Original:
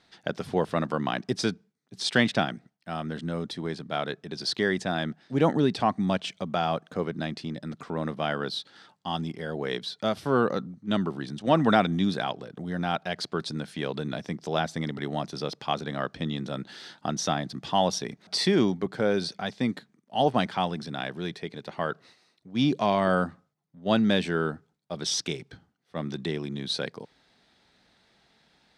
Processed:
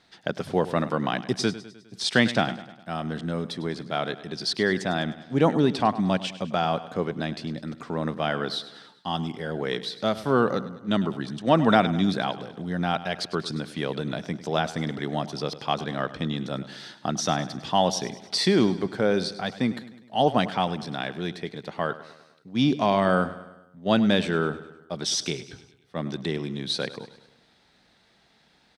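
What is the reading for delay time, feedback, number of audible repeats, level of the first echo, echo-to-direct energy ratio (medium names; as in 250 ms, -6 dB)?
102 ms, 54%, 4, -15.5 dB, -14.0 dB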